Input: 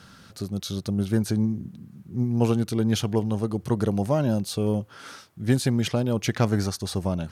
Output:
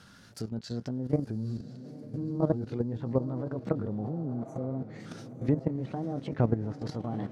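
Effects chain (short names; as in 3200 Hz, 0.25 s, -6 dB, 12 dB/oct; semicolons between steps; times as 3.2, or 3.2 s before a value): repeated pitch sweeps +5.5 st, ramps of 1.263 s; treble ducked by the level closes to 780 Hz, closed at -21 dBFS; spectral repair 4.02–4.65, 570–5800 Hz both; diffused feedback echo 0.931 s, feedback 51%, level -12 dB; level quantiser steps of 11 dB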